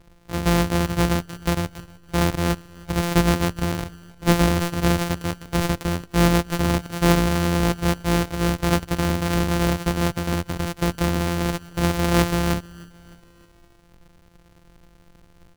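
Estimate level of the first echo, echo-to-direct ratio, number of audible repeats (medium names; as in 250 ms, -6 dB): -23.5 dB, -22.0 dB, 3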